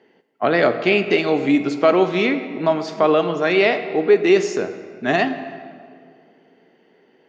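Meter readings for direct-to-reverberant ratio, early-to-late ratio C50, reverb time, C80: 9.0 dB, 10.5 dB, 2.2 s, 11.5 dB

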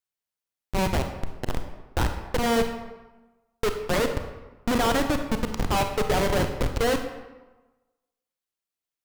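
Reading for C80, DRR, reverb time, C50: 9.5 dB, 6.0 dB, 1.1 s, 7.0 dB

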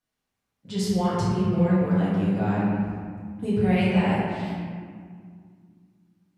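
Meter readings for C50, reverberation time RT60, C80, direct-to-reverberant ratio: -3.0 dB, 2.0 s, -0.5 dB, -9.5 dB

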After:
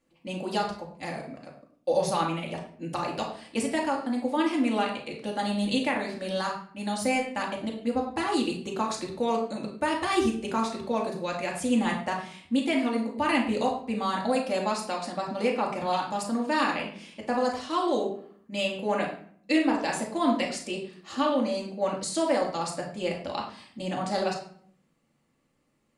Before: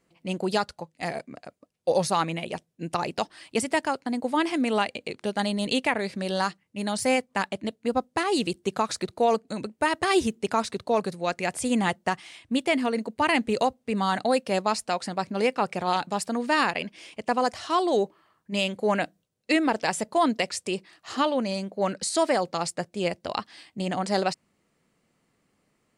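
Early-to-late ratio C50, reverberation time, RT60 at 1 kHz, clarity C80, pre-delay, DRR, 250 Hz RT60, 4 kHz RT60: 6.0 dB, 0.55 s, 0.50 s, 9.5 dB, 3 ms, -2.0 dB, 0.85 s, 0.40 s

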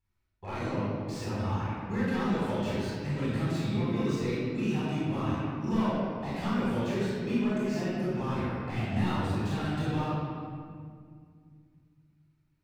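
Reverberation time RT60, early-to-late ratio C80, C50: 2.0 s, -1.5 dB, -4.0 dB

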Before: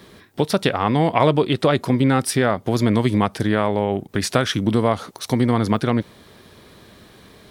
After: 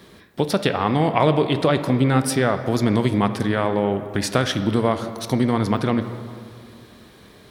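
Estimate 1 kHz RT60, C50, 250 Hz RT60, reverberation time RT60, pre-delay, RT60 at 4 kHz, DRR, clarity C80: 2.2 s, 10.0 dB, 2.4 s, 2.3 s, 13 ms, 1.4 s, 9.0 dB, 11.0 dB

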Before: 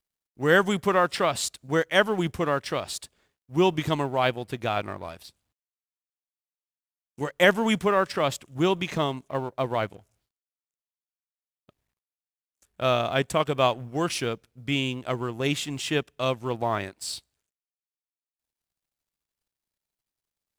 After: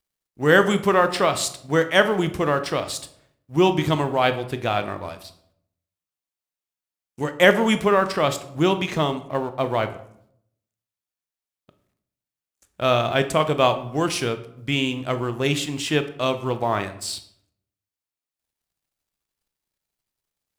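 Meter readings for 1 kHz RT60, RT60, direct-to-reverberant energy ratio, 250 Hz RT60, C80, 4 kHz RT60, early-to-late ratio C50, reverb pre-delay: 0.65 s, 0.70 s, 9.0 dB, 0.85 s, 16.0 dB, 0.45 s, 13.0 dB, 17 ms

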